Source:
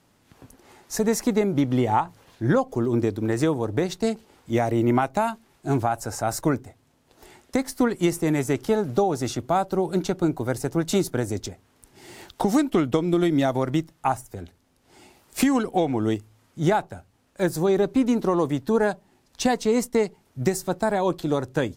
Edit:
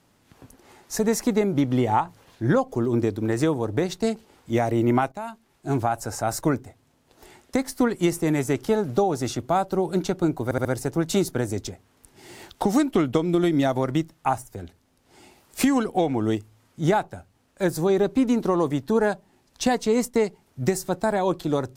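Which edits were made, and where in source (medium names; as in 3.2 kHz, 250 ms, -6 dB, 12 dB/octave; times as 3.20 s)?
5.12–5.87 s: fade in, from -14 dB
10.44 s: stutter 0.07 s, 4 plays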